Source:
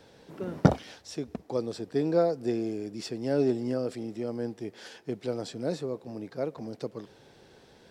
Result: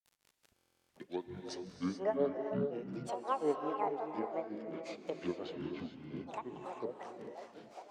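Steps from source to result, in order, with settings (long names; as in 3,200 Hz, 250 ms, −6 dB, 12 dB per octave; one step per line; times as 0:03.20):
turntable start at the beginning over 2.61 s
meter weighting curve A
delay with a band-pass on its return 474 ms, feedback 63%, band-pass 420 Hz, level −10 dB
noise gate with hold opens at −55 dBFS
high-shelf EQ 4,900 Hz −7 dB
surface crackle 70 per second −47 dBFS
granular cloud 184 ms, grains 5.6 per second, spray 38 ms, pitch spread up and down by 12 semitones
treble cut that deepens with the level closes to 1,800 Hz, closed at −36 dBFS
reverb whose tail is shaped and stops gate 460 ms rising, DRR 4.5 dB
buffer that repeats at 0:00.55, samples 1,024, times 14
level +1 dB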